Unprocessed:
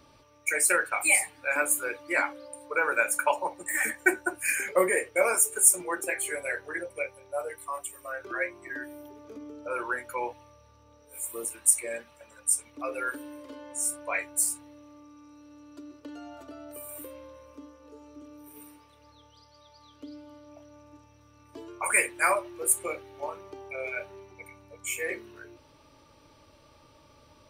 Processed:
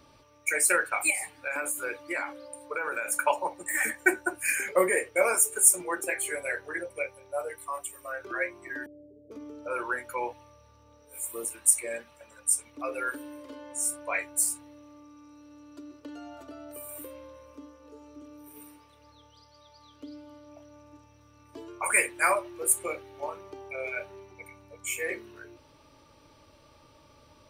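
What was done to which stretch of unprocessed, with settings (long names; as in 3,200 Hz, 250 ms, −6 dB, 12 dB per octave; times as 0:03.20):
0:01.10–0:03.12: downward compressor, threshold −27 dBFS
0:08.86–0:09.31: Chebyshev low-pass with heavy ripple 670 Hz, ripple 6 dB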